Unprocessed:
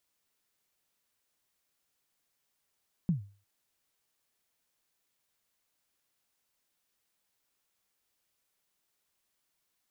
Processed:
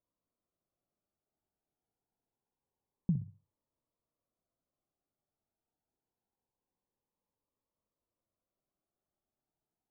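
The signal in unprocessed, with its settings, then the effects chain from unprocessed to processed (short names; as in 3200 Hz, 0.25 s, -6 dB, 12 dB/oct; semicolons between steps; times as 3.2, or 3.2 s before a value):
kick drum length 0.35 s, from 190 Hz, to 100 Hz, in 0.123 s, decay 0.38 s, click off, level -21 dB
LPF 1000 Hz 24 dB/oct; on a send: flutter echo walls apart 10.7 m, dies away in 0.32 s; on the sum: cascading phaser rising 0.25 Hz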